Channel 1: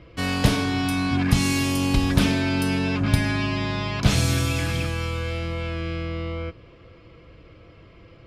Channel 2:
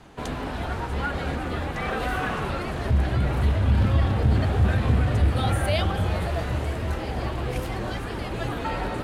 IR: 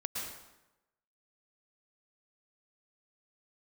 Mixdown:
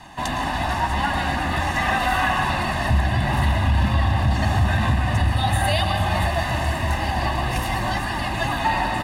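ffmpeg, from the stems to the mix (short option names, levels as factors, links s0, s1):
-filter_complex "[0:a]adelay=250,volume=0.178[s0];[1:a]volume=1.41,asplit=2[s1][s2];[s2]volume=0.668[s3];[2:a]atrim=start_sample=2205[s4];[s3][s4]afir=irnorm=-1:irlink=0[s5];[s0][s1][s5]amix=inputs=3:normalize=0,lowshelf=f=310:g=-10,aecho=1:1:1.1:0.92,alimiter=limit=0.316:level=0:latency=1:release=285"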